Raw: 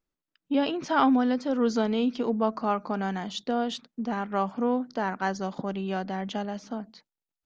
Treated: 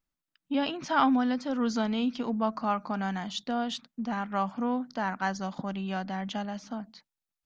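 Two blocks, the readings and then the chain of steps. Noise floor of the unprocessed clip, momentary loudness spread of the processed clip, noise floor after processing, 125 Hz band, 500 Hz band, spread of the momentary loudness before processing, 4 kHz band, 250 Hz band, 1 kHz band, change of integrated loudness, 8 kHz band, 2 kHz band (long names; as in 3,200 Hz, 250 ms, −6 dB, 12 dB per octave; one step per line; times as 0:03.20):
below −85 dBFS, 9 LU, below −85 dBFS, −1.0 dB, −6.0 dB, 9 LU, 0.0 dB, −2.5 dB, −1.5 dB, −2.5 dB, can't be measured, −0.5 dB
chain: parametric band 420 Hz −10 dB 0.82 octaves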